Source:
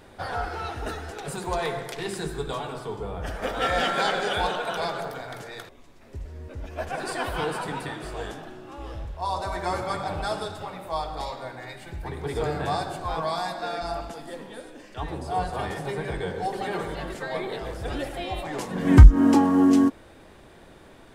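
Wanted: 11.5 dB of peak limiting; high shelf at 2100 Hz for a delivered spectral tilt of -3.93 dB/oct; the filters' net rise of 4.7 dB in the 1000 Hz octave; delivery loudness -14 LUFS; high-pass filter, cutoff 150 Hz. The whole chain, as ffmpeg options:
-af "highpass=150,equalizer=f=1k:t=o:g=5,highshelf=f=2.1k:g=6,volume=13dB,alimiter=limit=-0.5dB:level=0:latency=1"

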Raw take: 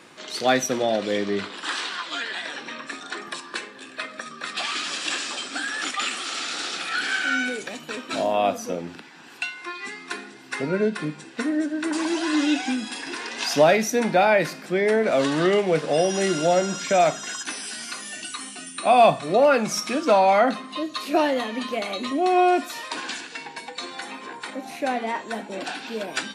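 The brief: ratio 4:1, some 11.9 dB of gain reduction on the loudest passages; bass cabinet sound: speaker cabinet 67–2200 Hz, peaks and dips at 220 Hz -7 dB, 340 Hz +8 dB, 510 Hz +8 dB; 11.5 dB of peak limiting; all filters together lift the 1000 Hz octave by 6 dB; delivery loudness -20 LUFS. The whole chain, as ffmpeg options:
-af "equalizer=f=1k:t=o:g=8,acompressor=threshold=-22dB:ratio=4,alimiter=limit=-22.5dB:level=0:latency=1,highpass=f=67:w=0.5412,highpass=f=67:w=1.3066,equalizer=f=220:t=q:w=4:g=-7,equalizer=f=340:t=q:w=4:g=8,equalizer=f=510:t=q:w=4:g=8,lowpass=f=2.2k:w=0.5412,lowpass=f=2.2k:w=1.3066,volume=10dB"

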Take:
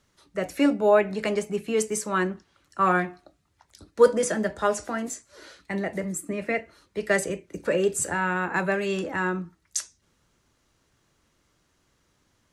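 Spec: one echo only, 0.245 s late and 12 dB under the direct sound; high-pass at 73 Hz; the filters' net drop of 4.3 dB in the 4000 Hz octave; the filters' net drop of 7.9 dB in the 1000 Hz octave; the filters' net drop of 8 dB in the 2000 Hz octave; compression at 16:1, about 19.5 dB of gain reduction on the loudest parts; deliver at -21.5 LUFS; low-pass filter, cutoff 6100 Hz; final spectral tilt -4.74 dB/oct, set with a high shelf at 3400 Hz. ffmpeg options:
-af "highpass=73,lowpass=6.1k,equalizer=f=1k:t=o:g=-8.5,equalizer=f=2k:t=o:g=-7.5,highshelf=f=3.4k:g=5.5,equalizer=f=4k:t=o:g=-5.5,acompressor=threshold=-32dB:ratio=16,aecho=1:1:245:0.251,volume=16dB"

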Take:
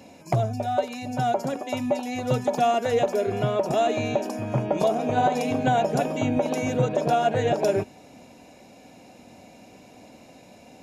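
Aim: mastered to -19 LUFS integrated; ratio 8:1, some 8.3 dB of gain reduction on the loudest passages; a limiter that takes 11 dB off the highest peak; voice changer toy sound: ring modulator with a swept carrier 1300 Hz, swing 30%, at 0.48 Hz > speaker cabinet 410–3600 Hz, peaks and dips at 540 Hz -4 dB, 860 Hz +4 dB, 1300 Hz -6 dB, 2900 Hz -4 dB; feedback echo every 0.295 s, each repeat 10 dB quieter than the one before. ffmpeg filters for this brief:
-af "acompressor=threshold=-26dB:ratio=8,alimiter=level_in=2dB:limit=-24dB:level=0:latency=1,volume=-2dB,aecho=1:1:295|590|885|1180:0.316|0.101|0.0324|0.0104,aeval=exprs='val(0)*sin(2*PI*1300*n/s+1300*0.3/0.48*sin(2*PI*0.48*n/s))':c=same,highpass=410,equalizer=f=540:t=q:w=4:g=-4,equalizer=f=860:t=q:w=4:g=4,equalizer=f=1.3k:t=q:w=4:g=-6,equalizer=f=2.9k:t=q:w=4:g=-4,lowpass=f=3.6k:w=0.5412,lowpass=f=3.6k:w=1.3066,volume=18.5dB"

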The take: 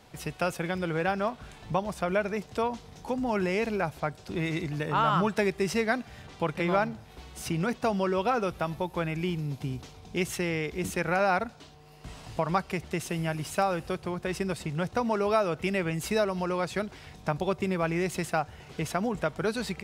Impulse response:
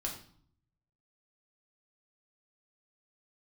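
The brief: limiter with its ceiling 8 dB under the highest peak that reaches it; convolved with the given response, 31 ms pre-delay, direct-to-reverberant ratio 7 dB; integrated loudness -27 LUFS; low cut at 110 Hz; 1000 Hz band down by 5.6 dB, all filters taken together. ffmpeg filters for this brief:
-filter_complex "[0:a]highpass=110,equalizer=f=1k:t=o:g=-8,alimiter=limit=-21.5dB:level=0:latency=1,asplit=2[a][b];[1:a]atrim=start_sample=2205,adelay=31[c];[b][c]afir=irnorm=-1:irlink=0,volume=-8dB[d];[a][d]amix=inputs=2:normalize=0,volume=5.5dB"

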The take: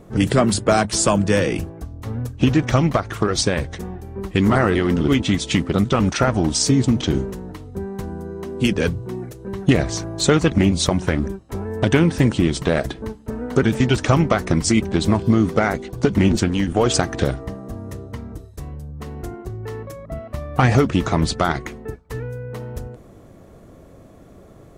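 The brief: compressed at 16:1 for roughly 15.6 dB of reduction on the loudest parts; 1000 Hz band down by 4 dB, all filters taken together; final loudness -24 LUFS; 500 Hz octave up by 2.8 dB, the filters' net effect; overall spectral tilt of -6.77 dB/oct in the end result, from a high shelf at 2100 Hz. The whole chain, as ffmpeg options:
-af "equalizer=f=500:t=o:g=5.5,equalizer=f=1k:t=o:g=-6.5,highshelf=f=2.1k:g=-7,acompressor=threshold=-26dB:ratio=16,volume=8dB"

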